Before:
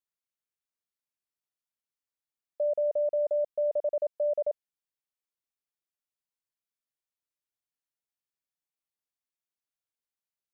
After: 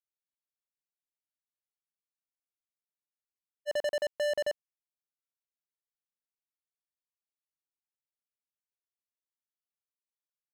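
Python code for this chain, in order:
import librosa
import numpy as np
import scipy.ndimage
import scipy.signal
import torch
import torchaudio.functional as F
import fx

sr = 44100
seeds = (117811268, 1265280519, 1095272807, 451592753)

y = fx.leveller(x, sr, passes=5)
y = fx.spec_freeze(y, sr, seeds[0], at_s=0.88, hold_s=2.8)
y = y * 10.0 ** (-4.5 / 20.0)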